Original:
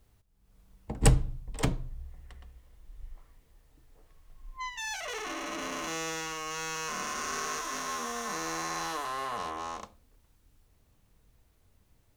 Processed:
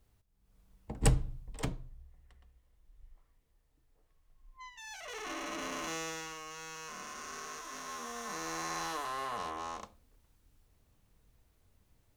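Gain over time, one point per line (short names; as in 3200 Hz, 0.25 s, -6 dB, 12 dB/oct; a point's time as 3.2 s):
1.42 s -5 dB
2.07 s -12 dB
4.83 s -12 dB
5.32 s -3 dB
5.91 s -3 dB
6.56 s -10 dB
7.57 s -10 dB
8.72 s -3 dB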